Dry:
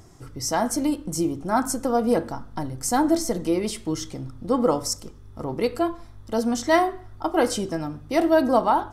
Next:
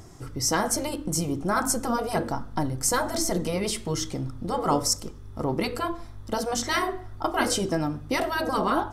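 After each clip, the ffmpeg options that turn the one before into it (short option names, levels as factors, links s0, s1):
-af "afftfilt=real='re*lt(hypot(re,im),0.501)':imag='im*lt(hypot(re,im),0.501)':win_size=1024:overlap=0.75,volume=1.41"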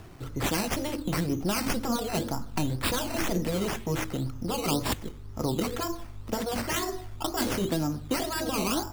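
-filter_complex "[0:a]acrusher=samples=10:mix=1:aa=0.000001:lfo=1:lforange=6:lforate=2,acrossover=split=380|3000[s0][s1][s2];[s1]acompressor=threshold=0.0251:ratio=6[s3];[s0][s3][s2]amix=inputs=3:normalize=0"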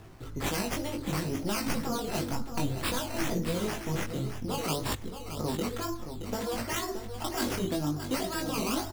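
-filter_complex "[0:a]flanger=delay=18:depth=3.3:speed=0.59,asplit=2[s0][s1];[s1]aecho=0:1:623:0.335[s2];[s0][s2]amix=inputs=2:normalize=0"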